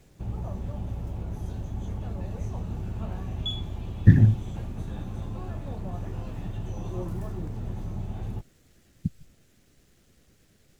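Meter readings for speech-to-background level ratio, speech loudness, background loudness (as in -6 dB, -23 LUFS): 13.0 dB, -22.0 LUFS, -35.0 LUFS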